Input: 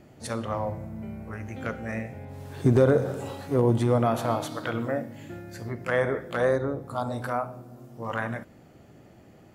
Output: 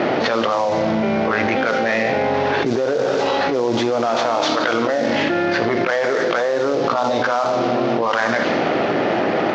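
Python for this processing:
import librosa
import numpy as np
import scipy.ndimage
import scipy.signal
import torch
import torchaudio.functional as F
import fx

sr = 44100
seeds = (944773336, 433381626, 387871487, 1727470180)

y = fx.cvsd(x, sr, bps=32000)
y = scipy.signal.sosfilt(scipy.signal.butter(2, 400.0, 'highpass', fs=sr, output='sos'), y)
y = fx.env_lowpass(y, sr, base_hz=2200.0, full_db=-24.5)
y = fx.env_flatten(y, sr, amount_pct=100)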